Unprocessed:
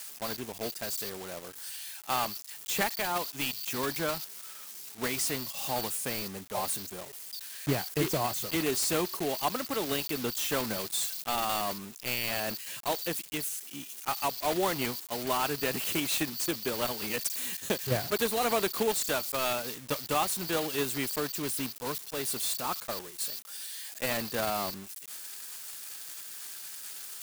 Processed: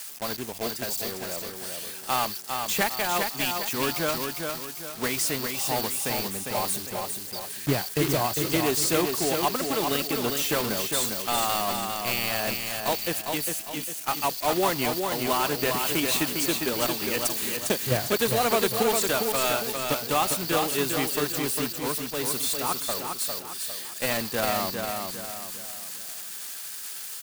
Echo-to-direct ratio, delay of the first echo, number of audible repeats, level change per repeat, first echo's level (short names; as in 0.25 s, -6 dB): -4.0 dB, 0.403 s, 4, -8.0 dB, -5.0 dB